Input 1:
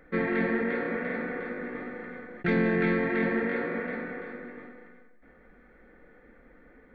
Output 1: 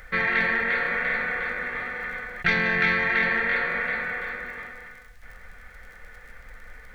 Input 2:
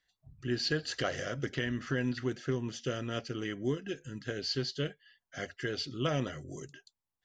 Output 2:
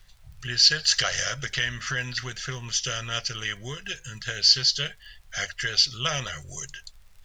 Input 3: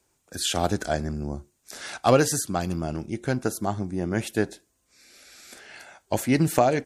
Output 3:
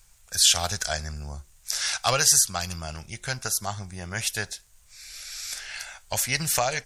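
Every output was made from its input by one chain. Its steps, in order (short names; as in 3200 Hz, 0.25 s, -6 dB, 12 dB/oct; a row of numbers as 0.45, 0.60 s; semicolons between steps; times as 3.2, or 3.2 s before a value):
in parallel at -2 dB: compressor, threshold -36 dBFS; on the sum: dynamic EQ 5500 Hz, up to +6 dB, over -52 dBFS, Q 2.7; added noise brown -57 dBFS; crackle 35/s -54 dBFS; passive tone stack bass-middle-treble 10-0-10; match loudness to -24 LUFS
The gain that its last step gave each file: +13.5, +12.5, +7.0 dB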